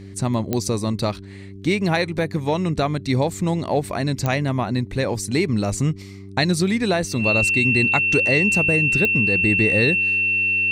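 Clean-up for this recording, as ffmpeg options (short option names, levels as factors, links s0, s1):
-af "adeclick=t=4,bandreject=f=97.7:t=h:w=4,bandreject=f=195.4:t=h:w=4,bandreject=f=293.1:t=h:w=4,bandreject=f=390.8:t=h:w=4,bandreject=f=2700:w=30"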